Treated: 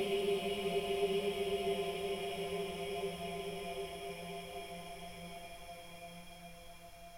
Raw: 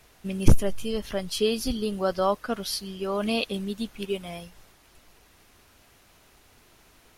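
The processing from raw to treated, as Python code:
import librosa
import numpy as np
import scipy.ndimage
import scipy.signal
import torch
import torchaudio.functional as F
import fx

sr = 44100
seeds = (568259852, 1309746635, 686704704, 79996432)

y = fx.dereverb_blind(x, sr, rt60_s=1.8)
y = fx.paulstretch(y, sr, seeds[0], factor=16.0, window_s=1.0, from_s=4.23)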